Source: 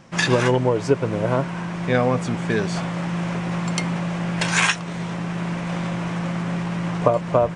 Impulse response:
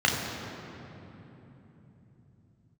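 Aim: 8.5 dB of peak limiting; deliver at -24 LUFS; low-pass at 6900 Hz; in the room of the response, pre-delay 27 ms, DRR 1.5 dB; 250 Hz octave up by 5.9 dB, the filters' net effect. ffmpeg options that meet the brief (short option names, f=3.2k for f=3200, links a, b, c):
-filter_complex "[0:a]lowpass=6.9k,equalizer=f=250:t=o:g=9,alimiter=limit=-8.5dB:level=0:latency=1,asplit=2[a][b];[1:a]atrim=start_sample=2205,adelay=27[c];[b][c]afir=irnorm=-1:irlink=0,volume=-17dB[d];[a][d]amix=inputs=2:normalize=0,volume=-6.5dB"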